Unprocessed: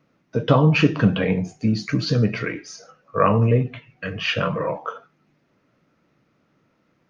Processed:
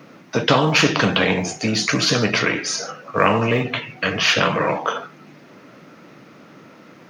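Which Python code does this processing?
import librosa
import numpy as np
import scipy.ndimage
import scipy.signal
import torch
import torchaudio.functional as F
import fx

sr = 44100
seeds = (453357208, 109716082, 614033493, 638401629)

y = scipy.signal.sosfilt(scipy.signal.butter(2, 170.0, 'highpass', fs=sr, output='sos'), x)
y = fx.spectral_comp(y, sr, ratio=2.0)
y = y * 10.0 ** (3.0 / 20.0)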